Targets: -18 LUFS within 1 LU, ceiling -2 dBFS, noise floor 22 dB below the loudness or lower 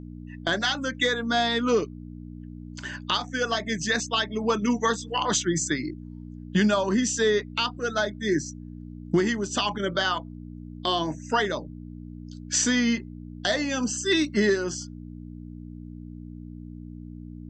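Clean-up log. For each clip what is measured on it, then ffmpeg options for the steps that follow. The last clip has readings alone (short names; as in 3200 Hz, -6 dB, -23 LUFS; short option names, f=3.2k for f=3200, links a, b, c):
hum 60 Hz; harmonics up to 300 Hz; hum level -38 dBFS; loudness -25.5 LUFS; peak -12.5 dBFS; loudness target -18.0 LUFS
-> -af "bandreject=f=60:t=h:w=4,bandreject=f=120:t=h:w=4,bandreject=f=180:t=h:w=4,bandreject=f=240:t=h:w=4,bandreject=f=300:t=h:w=4"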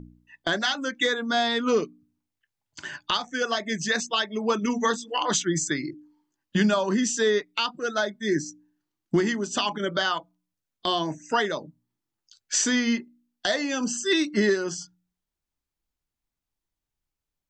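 hum none; loudness -25.5 LUFS; peak -12.0 dBFS; loudness target -18.0 LUFS
-> -af "volume=7.5dB"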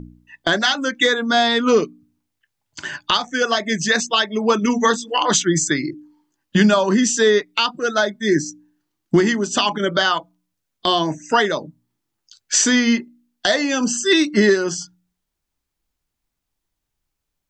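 loudness -18.0 LUFS; peak -4.5 dBFS; noise floor -79 dBFS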